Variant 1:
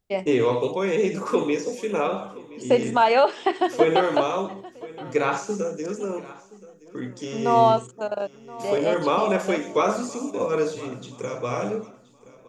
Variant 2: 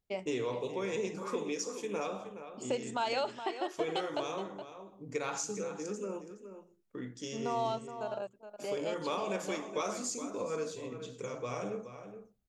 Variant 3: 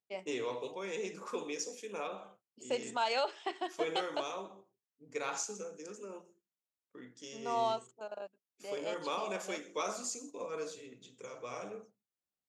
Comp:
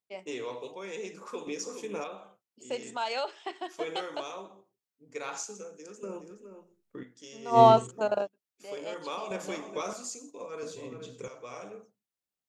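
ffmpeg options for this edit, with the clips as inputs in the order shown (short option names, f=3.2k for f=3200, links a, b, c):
-filter_complex "[1:a]asplit=4[a][b][c][d];[2:a]asplit=6[e][f][g][h][i][j];[e]atrim=end=1.472[k];[a]atrim=start=1.468:end=2.042[l];[f]atrim=start=2.038:end=6.032[m];[b]atrim=start=6.028:end=7.032[n];[g]atrim=start=7.028:end=7.6[o];[0:a]atrim=start=7.5:end=8.29[p];[h]atrim=start=8.19:end=9.312[q];[c]atrim=start=9.308:end=9.932[r];[i]atrim=start=9.928:end=10.632[s];[d]atrim=start=10.628:end=11.282[t];[j]atrim=start=11.278[u];[k][l]acrossfade=d=0.004:c1=hsin:c2=hsin[v];[v][m]acrossfade=d=0.004:c1=hsin:c2=hsin[w];[w][n]acrossfade=d=0.004:c1=hsin:c2=hsin[x];[x][o]acrossfade=d=0.004:c1=hsin:c2=hsin[y];[y][p]acrossfade=d=0.1:c1=tri:c2=tri[z];[z][q]acrossfade=d=0.1:c1=tri:c2=tri[aa];[aa][r]acrossfade=d=0.004:c1=hsin:c2=hsin[ab];[ab][s]acrossfade=d=0.004:c1=hsin:c2=hsin[ac];[ac][t]acrossfade=d=0.004:c1=hsin:c2=hsin[ad];[ad][u]acrossfade=d=0.004:c1=hsin:c2=hsin"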